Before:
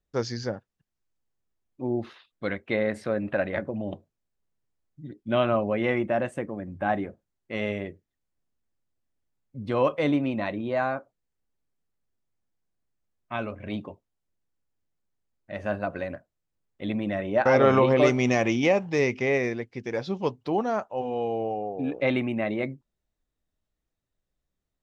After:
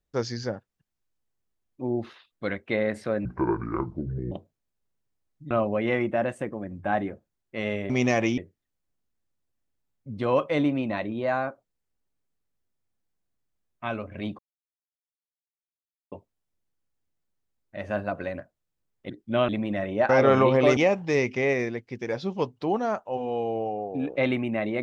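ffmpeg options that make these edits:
-filter_complex "[0:a]asplit=10[s0][s1][s2][s3][s4][s5][s6][s7][s8][s9];[s0]atrim=end=3.254[s10];[s1]atrim=start=3.25:end=3.89,asetpts=PTS-STARTPTS,asetrate=26460,aresample=44100[s11];[s2]atrim=start=3.886:end=5.082[s12];[s3]atrim=start=5.468:end=7.862[s13];[s4]atrim=start=18.128:end=18.612[s14];[s5]atrim=start=7.858:end=13.87,asetpts=PTS-STARTPTS,afade=t=out:st=6.008:d=0.004:c=hsin,apad=pad_dur=1.73[s15];[s6]atrim=start=13.87:end=16.852,asetpts=PTS-STARTPTS,afade=t=in:d=0.004:c=hsin[s16];[s7]atrim=start=5.078:end=5.472[s17];[s8]atrim=start=16.848:end=18.132[s18];[s9]atrim=start=18.608[s19];[s10][s11]acrossfade=d=0.004:c1=hsin:c2=hsin[s20];[s20][s12]acrossfade=d=0.004:c1=hsin:c2=hsin[s21];[s21][s13]acrossfade=d=0.004:c1=hsin:c2=hsin[s22];[s22][s14]acrossfade=d=0.004:c1=hsin:c2=hsin[s23];[s15][s16]concat=n=2:v=0:a=1[s24];[s23][s24]acrossfade=d=0.004:c1=hsin:c2=hsin[s25];[s25][s17]acrossfade=d=0.004:c1=hsin:c2=hsin[s26];[s26][s18]acrossfade=d=0.004:c1=hsin:c2=hsin[s27];[s27][s19]acrossfade=d=0.004:c1=hsin:c2=hsin"

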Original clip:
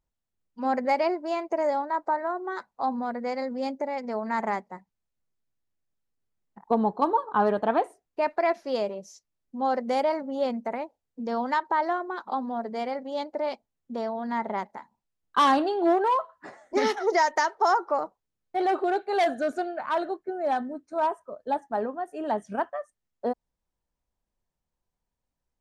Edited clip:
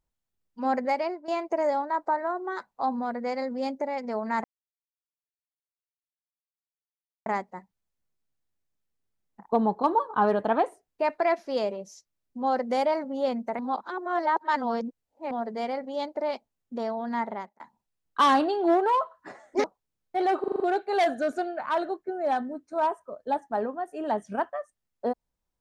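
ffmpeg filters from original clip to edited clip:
-filter_complex "[0:a]asplit=12[s0][s1][s2][s3][s4][s5][s6][s7][s8][s9][s10][s11];[s0]atrim=end=1.28,asetpts=PTS-STARTPTS,afade=t=out:st=0.74:d=0.54:silence=0.281838[s12];[s1]atrim=start=1.28:end=4.44,asetpts=PTS-STARTPTS,afade=t=in:d=0.004:c=hsin:silence=0.281838,afade=t=out:st=3.156:d=0.004:c=hsin,apad=pad_dur=2.82[s13];[s2]atrim=start=4.44:end=10.772,asetpts=PTS-STARTPTS,afade=t=in:d=0.004:c=hsin[s14];[s3]atrim=start=10.768:end=12.492,asetpts=PTS-STARTPTS,areverse[s15];[s4]atrim=start=12.488:end=14.78,asetpts=PTS-STARTPTS,afade=t=out:st=1.892:d=0.4[s16];[s5]atrim=start=14.78:end=16.822,asetpts=PTS-STARTPTS,afade=t=in:d=0.004:c=hsin[s17];[s6]atrim=start=18.038:end=18.842[s18];[s7]atrim=start=18.798:end=18.842[s19];[s8]atrim=start=18.798:end=18.842[s20];[s9]atrim=start=18.798:end=18.842[s21];[s10]atrim=start=18.798:end=18.842[s22];[s11]atrim=start=18.798[s23];[s12][s13][s14]concat=n=3:v=0:a=1[s24];[s24][s15]acrossfade=d=0.004:c1=hsin:c2=hsin[s25];[s16][s17]concat=n=2:v=0:a=1[s26];[s25][s26]acrossfade=d=0.004:c1=hsin:c2=hsin[s27];[s27][s18]acrossfade=d=0.004:c1=hsin:c2=hsin[s28];[s28][s19]acrossfade=d=0.004:c1=hsin:c2=hsin[s29];[s29][s20]acrossfade=d=0.004:c1=hsin:c2=hsin[s30];[s30][s21]acrossfade=d=0.004:c1=hsin:c2=hsin[s31];[s31][s22]acrossfade=d=0.004:c1=hsin:c2=hsin[s32];[s32][s23]acrossfade=d=0.004:c1=hsin:c2=hsin"

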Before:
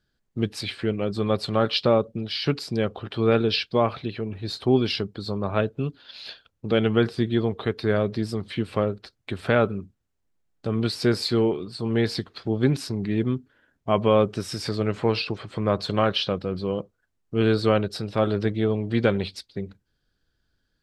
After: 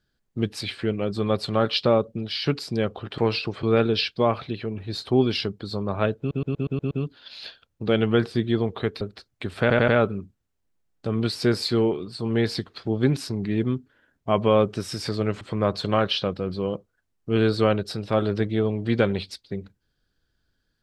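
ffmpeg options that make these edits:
-filter_complex "[0:a]asplit=14[s0][s1][s2][s3][s4][s5][s6][s7][s8][s9][s10][s11][s12][s13];[s0]atrim=end=3.182[s14];[s1]atrim=start=15.008:end=15.462[s15];[s2]atrim=start=3.178:end=5.862[s16];[s3]atrim=start=5.738:end=5.862[s17];[s4]atrim=start=5.738:end=5.862[s18];[s5]atrim=start=5.738:end=5.862[s19];[s6]atrim=start=5.738:end=5.862[s20];[s7]atrim=start=5.738:end=5.862[s21];[s8]atrim=start=5.738:end=7.842[s22];[s9]atrim=start=8.878:end=9.572[s23];[s10]atrim=start=9.478:end=9.572[s24];[s11]atrim=start=9.478:end=9.572[s25];[s12]atrim=start=9.478:end=15.012[s26];[s13]atrim=start=15.458[s27];[s14][s15]acrossfade=d=0.004:c1=hsin:c2=hsin[s28];[s28][s16]acrossfade=d=0.004:c1=hsin:c2=hsin[s29];[s29][s17]acrossfade=d=0.004:c1=hsin:c2=hsin[s30];[s30][s18]acrossfade=d=0.004:c1=hsin:c2=hsin[s31];[s31][s19]acrossfade=d=0.004:c1=hsin:c2=hsin[s32];[s32][s20]acrossfade=d=0.004:c1=hsin:c2=hsin[s33];[s33][s21]acrossfade=d=0.004:c1=hsin:c2=hsin[s34];[s34][s22]acrossfade=d=0.004:c1=hsin:c2=hsin[s35];[s35][s23]acrossfade=d=0.004:c1=hsin:c2=hsin[s36];[s36][s24]acrossfade=d=0.004:c1=hsin:c2=hsin[s37];[s37][s25]acrossfade=d=0.004:c1=hsin:c2=hsin[s38];[s38][s26]acrossfade=d=0.004:c1=hsin:c2=hsin[s39];[s39][s27]acrossfade=d=0.004:c1=hsin:c2=hsin"

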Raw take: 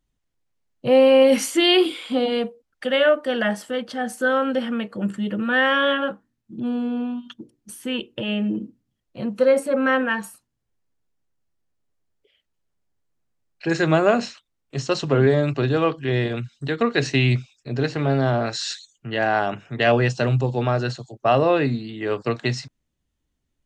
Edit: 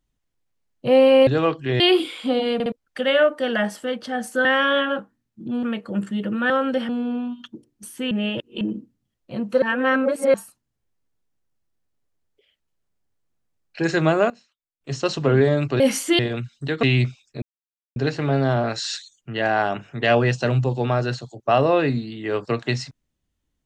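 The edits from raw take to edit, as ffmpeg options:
-filter_complex "[0:a]asplit=20[s0][s1][s2][s3][s4][s5][s6][s7][s8][s9][s10][s11][s12][s13][s14][s15][s16][s17][s18][s19];[s0]atrim=end=1.272[s20];[s1]atrim=start=15.658:end=16.192[s21];[s2]atrim=start=1.658:end=2.462[s22];[s3]atrim=start=2.398:end=2.462[s23];[s4]atrim=start=2.398:end=2.462[s24];[s5]atrim=start=2.578:end=4.312[s25];[s6]atrim=start=5.568:end=6.752[s26];[s7]atrim=start=4.698:end=5.572[s27];[s8]atrim=start=4.308:end=4.702[s28];[s9]atrim=start=6.748:end=7.972[s29];[s10]atrim=start=7.968:end=8.472,asetpts=PTS-STARTPTS,areverse[s30];[s11]atrim=start=8.468:end=9.482[s31];[s12]atrim=start=9.478:end=10.202,asetpts=PTS-STARTPTS,areverse[s32];[s13]atrim=start=10.198:end=14.16,asetpts=PTS-STARTPTS,afade=t=out:st=3.472:d=0.49:c=log:silence=0.0707946[s33];[s14]atrim=start=14.16:end=14.67,asetpts=PTS-STARTPTS,volume=0.0708[s34];[s15]atrim=start=14.67:end=15.662,asetpts=PTS-STARTPTS,afade=t=in:d=0.49:c=log:silence=0.0707946[s35];[s16]atrim=start=1.268:end=1.662[s36];[s17]atrim=start=16.188:end=16.832[s37];[s18]atrim=start=17.138:end=17.73,asetpts=PTS-STARTPTS,afade=t=out:st=0.588:d=0.004:c=hsin,apad=pad_dur=0.54[s38];[s19]atrim=start=17.73,asetpts=PTS-STARTPTS,afade=t=in:d=0.004:c=hsin[s39];[s20][s21]acrossfade=d=0.004:c1=hsin:c2=hsin[s40];[s40][s22]acrossfade=d=0.004:c1=hsin:c2=hsin[s41];[s41][s23]acrossfade=d=0.004:c1=hsin:c2=hsin[s42];[s42][s24]acrossfade=d=0.004:c1=hsin:c2=hsin[s43];[s43][s25]acrossfade=d=0.004:c1=hsin:c2=hsin[s44];[s44][s26]acrossfade=d=0.004:c1=hsin:c2=hsin[s45];[s45][s27]acrossfade=d=0.004:c1=hsin:c2=hsin[s46];[s46][s28]acrossfade=d=0.004:c1=hsin:c2=hsin[s47];[s47][s29]acrossfade=d=0.004:c1=hsin:c2=hsin[s48];[s48][s30]acrossfade=d=0.004:c1=hsin:c2=hsin[s49];[s49][s31]acrossfade=d=0.004:c1=hsin:c2=hsin[s50];[s50][s32]acrossfade=d=0.004:c1=hsin:c2=hsin[s51];[s33][s34][s35]concat=n=3:v=0:a=1[s52];[s51][s52]acrossfade=d=0.004:c1=hsin:c2=hsin[s53];[s53][s36]acrossfade=d=0.004:c1=hsin:c2=hsin[s54];[s54][s37]acrossfade=d=0.004:c1=hsin:c2=hsin[s55];[s38][s39]concat=n=2:v=0:a=1[s56];[s55][s56]acrossfade=d=0.004:c1=hsin:c2=hsin"

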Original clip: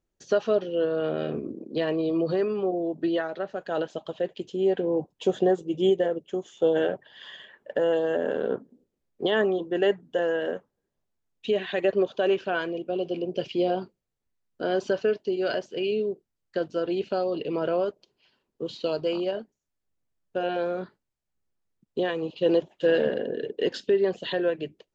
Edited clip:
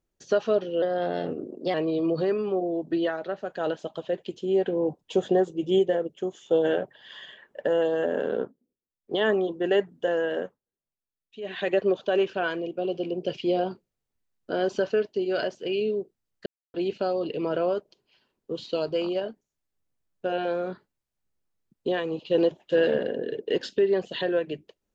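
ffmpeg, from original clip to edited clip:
-filter_complex "[0:a]asplit=9[s0][s1][s2][s3][s4][s5][s6][s7][s8];[s0]atrim=end=0.824[s9];[s1]atrim=start=0.82:end=1.85,asetpts=PTS-STARTPTS,asetrate=49392,aresample=44100,atrim=end_sample=40556,asetpts=PTS-STARTPTS[s10];[s2]atrim=start=1.846:end=8.67,asetpts=PTS-STARTPTS,afade=t=out:st=6.644:d=0.18:silence=0.125893[s11];[s3]atrim=start=8.67:end=9.13,asetpts=PTS-STARTPTS,volume=0.126[s12];[s4]atrim=start=9.13:end=10.71,asetpts=PTS-STARTPTS,afade=t=in:d=0.18:silence=0.125893,afade=t=out:st=1.42:d=0.16:silence=0.188365[s13];[s5]atrim=start=10.71:end=11.52,asetpts=PTS-STARTPTS,volume=0.188[s14];[s6]atrim=start=11.52:end=16.57,asetpts=PTS-STARTPTS,afade=t=in:d=0.16:silence=0.188365,afade=t=out:st=5.046:d=0.004:c=hsin[s15];[s7]atrim=start=16.57:end=16.85,asetpts=PTS-STARTPTS,volume=0[s16];[s8]atrim=start=16.85,asetpts=PTS-STARTPTS,afade=t=in:d=0.004:c=hsin[s17];[s9][s10]acrossfade=d=0.004:c1=hsin:c2=hsin[s18];[s11][s12][s13][s14][s15][s16][s17]concat=n=7:v=0:a=1[s19];[s18][s19]acrossfade=d=0.004:c1=hsin:c2=hsin"

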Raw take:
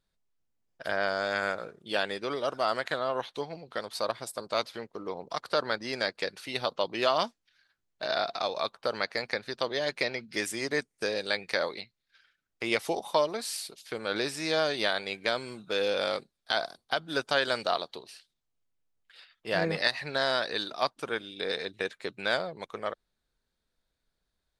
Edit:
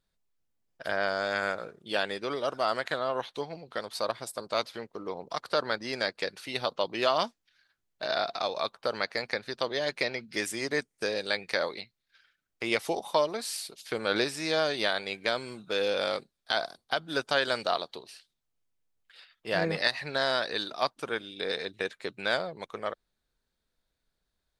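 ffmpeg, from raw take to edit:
-filter_complex "[0:a]asplit=3[s0][s1][s2];[s0]atrim=end=13.792[s3];[s1]atrim=start=13.788:end=14.242,asetpts=PTS-STARTPTS,volume=1.5[s4];[s2]atrim=start=14.238[s5];[s3][s4]acrossfade=d=0.004:c1=hsin:c2=hsin[s6];[s6][s5]acrossfade=d=0.004:c1=hsin:c2=hsin"

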